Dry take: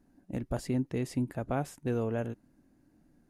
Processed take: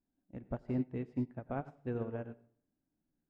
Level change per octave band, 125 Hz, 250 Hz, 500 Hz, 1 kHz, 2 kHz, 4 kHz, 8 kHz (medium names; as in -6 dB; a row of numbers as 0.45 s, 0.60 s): -6.5 dB, -5.0 dB, -6.5 dB, -7.0 dB, -8.5 dB, under -15 dB, under -30 dB